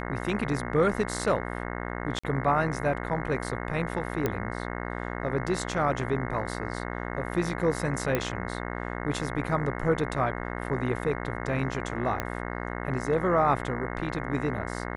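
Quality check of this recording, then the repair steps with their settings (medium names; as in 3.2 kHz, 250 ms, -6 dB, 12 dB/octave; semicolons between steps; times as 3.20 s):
buzz 60 Hz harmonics 36 -34 dBFS
2.19–2.23 s: dropout 45 ms
4.26 s: pop -13 dBFS
8.15 s: pop -12 dBFS
12.20 s: pop -14 dBFS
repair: de-click; de-hum 60 Hz, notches 36; interpolate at 2.19 s, 45 ms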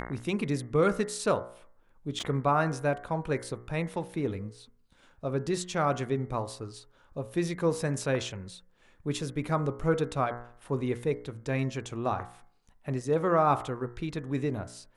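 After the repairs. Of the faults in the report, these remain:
nothing left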